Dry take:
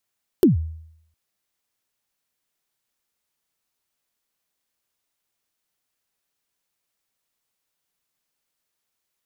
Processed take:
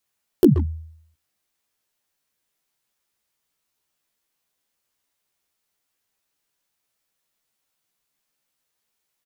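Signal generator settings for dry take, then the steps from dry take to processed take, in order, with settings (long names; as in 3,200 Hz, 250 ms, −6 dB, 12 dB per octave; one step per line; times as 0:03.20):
synth kick length 0.71 s, from 410 Hz, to 80 Hz, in 136 ms, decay 0.72 s, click on, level −8 dB
double-tracking delay 14 ms −2.5 dB
far-end echo of a speakerphone 130 ms, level −11 dB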